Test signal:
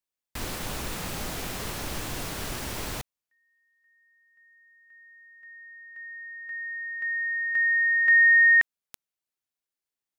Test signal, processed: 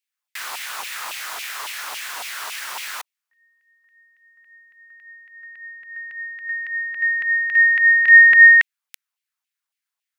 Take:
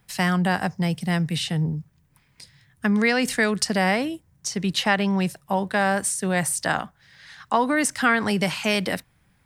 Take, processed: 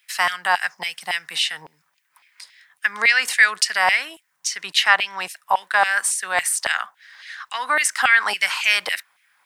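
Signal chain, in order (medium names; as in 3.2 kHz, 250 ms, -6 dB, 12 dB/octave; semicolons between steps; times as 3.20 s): LFO high-pass saw down 3.6 Hz 840–2700 Hz; trim +3.5 dB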